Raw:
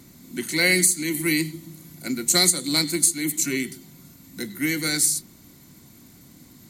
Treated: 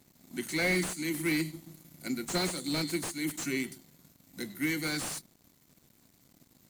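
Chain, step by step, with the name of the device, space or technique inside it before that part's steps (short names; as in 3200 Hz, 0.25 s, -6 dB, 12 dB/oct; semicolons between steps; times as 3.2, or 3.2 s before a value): early transistor amplifier (crossover distortion -49.5 dBFS; slew limiter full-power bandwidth 210 Hz); gain -6 dB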